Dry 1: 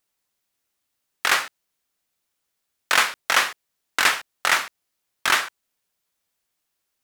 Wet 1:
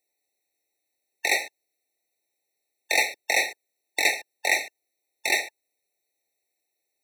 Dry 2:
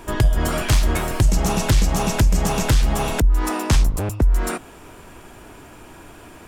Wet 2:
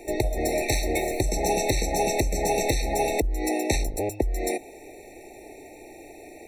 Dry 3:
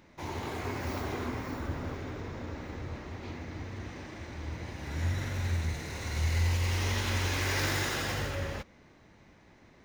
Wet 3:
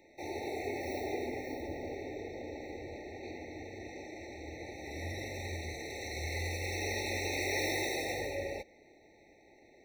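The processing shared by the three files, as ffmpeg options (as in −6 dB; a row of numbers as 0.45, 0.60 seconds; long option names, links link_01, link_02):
-filter_complex "[0:a]lowshelf=frequency=260:width_type=q:width=1.5:gain=-11,acrossover=split=500|930[link_01][link_02][link_03];[link_01]crystalizer=i=1.5:c=0[link_04];[link_04][link_02][link_03]amix=inputs=3:normalize=0,afftfilt=real='re*eq(mod(floor(b*sr/1024/900),2),0)':imag='im*eq(mod(floor(b*sr/1024/900),2),0)':win_size=1024:overlap=0.75"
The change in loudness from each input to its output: −3.5, −5.5, −4.0 LU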